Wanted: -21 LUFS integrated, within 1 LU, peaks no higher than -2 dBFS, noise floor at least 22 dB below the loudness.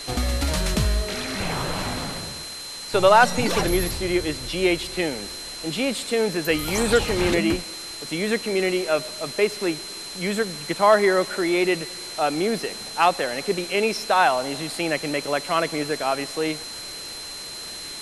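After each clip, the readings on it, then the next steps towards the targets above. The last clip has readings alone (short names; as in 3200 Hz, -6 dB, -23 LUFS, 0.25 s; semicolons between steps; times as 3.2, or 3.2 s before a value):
steady tone 4100 Hz; tone level -35 dBFS; noise floor -36 dBFS; noise floor target -46 dBFS; loudness -23.5 LUFS; peak -5.5 dBFS; loudness target -21.0 LUFS
-> notch 4100 Hz, Q 30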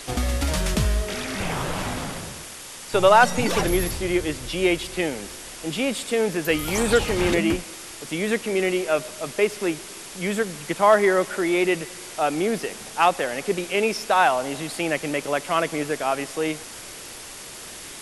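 steady tone none; noise floor -39 dBFS; noise floor target -45 dBFS
-> noise print and reduce 6 dB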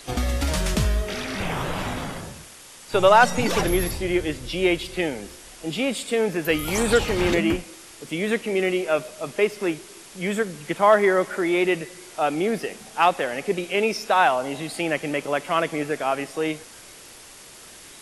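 noise floor -45 dBFS; loudness -23.0 LUFS; peak -5.5 dBFS; loudness target -21.0 LUFS
-> gain +2 dB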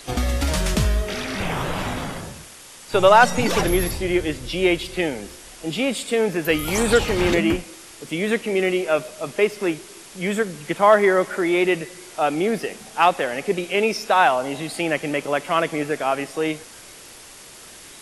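loudness -21.0 LUFS; peak -3.5 dBFS; noise floor -43 dBFS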